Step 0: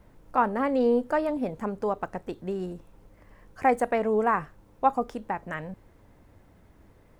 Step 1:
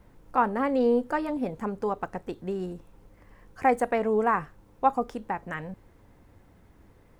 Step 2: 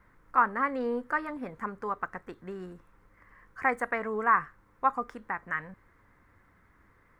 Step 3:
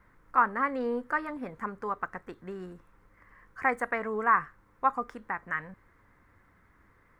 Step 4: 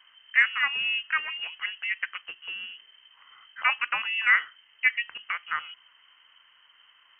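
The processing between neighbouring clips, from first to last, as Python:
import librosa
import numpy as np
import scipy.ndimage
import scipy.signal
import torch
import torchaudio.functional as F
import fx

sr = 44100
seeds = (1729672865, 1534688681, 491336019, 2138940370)

y1 = fx.notch(x, sr, hz=620.0, q=12.0)
y2 = fx.band_shelf(y1, sr, hz=1500.0, db=13.0, octaves=1.3)
y2 = y2 * 10.0 ** (-8.5 / 20.0)
y3 = y2
y4 = fx.freq_invert(y3, sr, carrier_hz=3100)
y4 = y4 * 10.0 ** (2.5 / 20.0)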